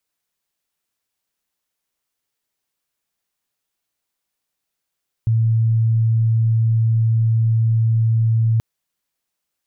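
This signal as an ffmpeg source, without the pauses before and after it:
-f lavfi -i "aevalsrc='0.224*sin(2*PI*113*t)':d=3.33:s=44100"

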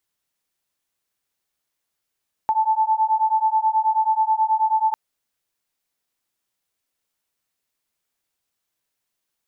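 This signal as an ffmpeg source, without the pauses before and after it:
-f lavfi -i "aevalsrc='0.106*(sin(2*PI*872*t)+sin(2*PI*881.3*t))':d=2.45:s=44100"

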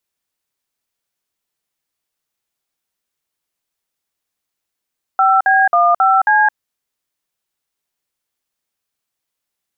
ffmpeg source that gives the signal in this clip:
-f lavfi -i "aevalsrc='0.266*clip(min(mod(t,0.27),0.217-mod(t,0.27))/0.002,0,1)*(eq(floor(t/0.27),0)*(sin(2*PI*770*mod(t,0.27))+sin(2*PI*1336*mod(t,0.27)))+eq(floor(t/0.27),1)*(sin(2*PI*770*mod(t,0.27))+sin(2*PI*1633*mod(t,0.27)))+eq(floor(t/0.27),2)*(sin(2*PI*697*mod(t,0.27))+sin(2*PI*1209*mod(t,0.27)))+eq(floor(t/0.27),3)*(sin(2*PI*770*mod(t,0.27))+sin(2*PI*1336*mod(t,0.27)))+eq(floor(t/0.27),4)*(sin(2*PI*852*mod(t,0.27))+sin(2*PI*1633*mod(t,0.27))))':d=1.35:s=44100"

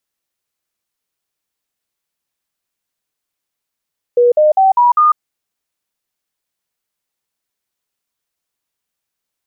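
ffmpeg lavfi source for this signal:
-f lavfi -i "aevalsrc='0.473*clip(min(mod(t,0.2),0.15-mod(t,0.2))/0.005,0,1)*sin(2*PI*484*pow(2,floor(t/0.2)/3)*mod(t,0.2))':d=1:s=44100"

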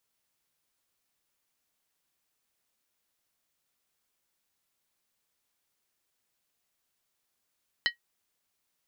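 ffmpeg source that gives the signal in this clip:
-f lavfi -i "aevalsrc='0.106*pow(10,-3*t/0.12)*sin(2*PI*1900*t)+0.0708*pow(10,-3*t/0.095)*sin(2*PI*3028.6*t)+0.0473*pow(10,-3*t/0.082)*sin(2*PI*4058.4*t)+0.0316*pow(10,-3*t/0.079)*sin(2*PI*4362.4*t)+0.0211*pow(10,-3*t/0.074)*sin(2*PI*5040.7*t)':d=0.63:s=44100"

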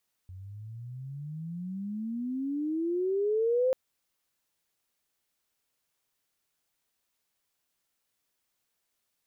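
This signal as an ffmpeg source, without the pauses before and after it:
-f lavfi -i "aevalsrc='pow(10,(-22+19.5*(t/3.44-1))/20)*sin(2*PI*90.3*3.44/(30.5*log(2)/12)*(exp(30.5*log(2)/12*t/3.44)-1))':d=3.44:s=44100"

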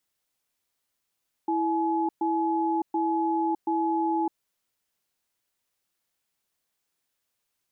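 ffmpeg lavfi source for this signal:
-f lavfi -i "aevalsrc='0.0531*(sin(2*PI*329*t)+sin(2*PI*849*t))*clip(min(mod(t,0.73),0.61-mod(t,0.73))/0.005,0,1)':d=2.86:s=44100"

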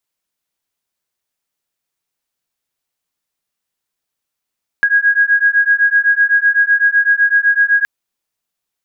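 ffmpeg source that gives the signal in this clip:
-f lavfi -i "aevalsrc='0.237*(sin(2*PI*1640*t)+sin(2*PI*1647.9*t))':d=3.02:s=44100"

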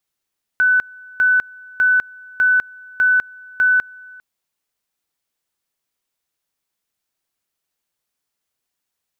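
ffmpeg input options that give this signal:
-f lavfi -i "aevalsrc='pow(10,(-11-25.5*gte(mod(t,0.6),0.2))/20)*sin(2*PI*1500*t)':d=3.6:s=44100"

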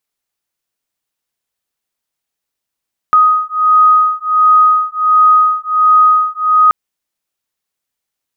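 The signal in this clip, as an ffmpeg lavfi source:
-f lavfi -i "aevalsrc='0.316*(sin(2*PI*1250*t)+sin(2*PI*1251.4*t))':d=3.58:s=44100"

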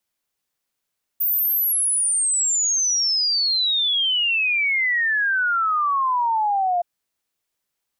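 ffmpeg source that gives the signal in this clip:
-f lavfi -i "aevalsrc='0.133*clip(min(t,5.62-t)/0.01,0,1)*sin(2*PI*15000*5.62/log(690/15000)*(exp(log(690/15000)*t/5.62)-1))':d=5.62:s=44100"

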